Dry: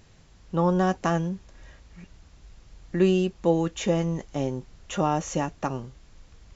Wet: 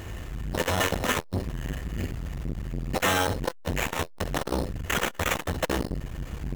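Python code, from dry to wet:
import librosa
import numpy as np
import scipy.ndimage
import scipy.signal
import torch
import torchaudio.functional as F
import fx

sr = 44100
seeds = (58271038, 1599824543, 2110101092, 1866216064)

p1 = fx.octave_divider(x, sr, octaves=1, level_db=-3.0)
p2 = scipy.signal.sosfilt(scipy.signal.butter(2, 43.0, 'highpass', fs=sr, output='sos'), p1)
p3 = fx.low_shelf(p2, sr, hz=120.0, db=5.5)
p4 = p3 + 0.61 * np.pad(p3, (int(2.9 * sr / 1000.0), 0))[:len(p3)]
p5 = fx.dynamic_eq(p4, sr, hz=630.0, q=4.0, threshold_db=-42.0, ratio=4.0, max_db=8)
p6 = fx.over_compress(p5, sr, threshold_db=-32.0, ratio=-1.0)
p7 = p5 + (p6 * librosa.db_to_amplitude(-1.5))
p8 = 10.0 ** (-23.0 / 20.0) * (np.abs((p7 / 10.0 ** (-23.0 / 20.0) + 3.0) % 4.0 - 2.0) - 1.0)
p9 = fx.small_body(p8, sr, hz=(510.0, 1800.0), ring_ms=95, db=13)
p10 = fx.sample_hold(p9, sr, seeds[0], rate_hz=4700.0, jitter_pct=0)
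p11 = fx.room_early_taps(p10, sr, ms=(21, 65), db=(-14.0, -9.0))
p12 = fx.transformer_sat(p11, sr, knee_hz=500.0)
y = p12 * librosa.db_to_amplitude(5.0)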